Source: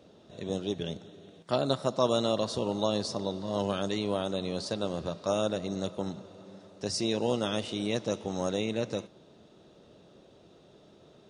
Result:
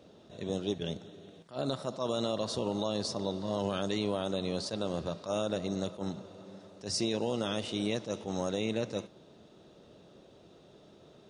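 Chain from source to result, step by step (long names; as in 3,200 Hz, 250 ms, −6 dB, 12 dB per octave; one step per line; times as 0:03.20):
brickwall limiter −20.5 dBFS, peak gain reduction 9 dB
level that may rise only so fast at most 240 dB per second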